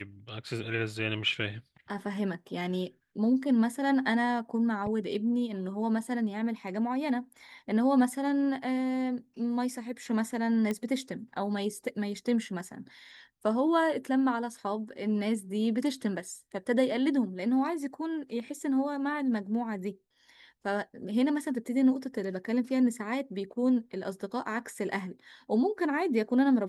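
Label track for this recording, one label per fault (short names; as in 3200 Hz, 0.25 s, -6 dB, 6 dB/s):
10.710000	10.710000	pop -19 dBFS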